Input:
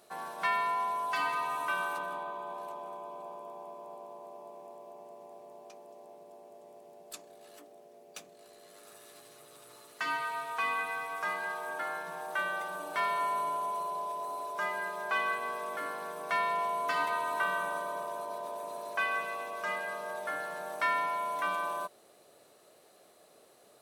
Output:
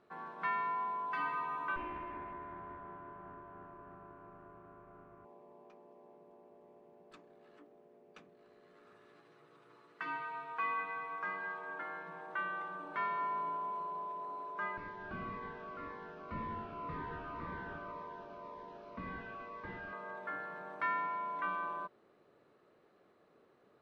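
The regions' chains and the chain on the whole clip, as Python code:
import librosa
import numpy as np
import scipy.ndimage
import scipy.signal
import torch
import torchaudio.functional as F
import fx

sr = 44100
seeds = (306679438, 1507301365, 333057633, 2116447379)

y = fx.chain(x, sr, fx.lower_of_two(delay_ms=2.9),
    fx.lowpass(hz=2400.0, slope=12), at=(1.76, 5.25))
y = fx.chain(y, sr, fx.highpass(hz=170.0, slope=6),
    fx.comb(ms=6.1, depth=0.33), at=(9.17, 12.85))
y = fx.chain(y, sr, fx.delta_mod(bps=32000, step_db=-47.5),
    fx.notch_cascade(direction='falling', hz=1.9), at=(14.77, 19.93))
y = scipy.signal.sosfilt(scipy.signal.butter(2, 1500.0, 'lowpass', fs=sr, output='sos'), y)
y = fx.peak_eq(y, sr, hz=660.0, db=-11.5, octaves=0.85)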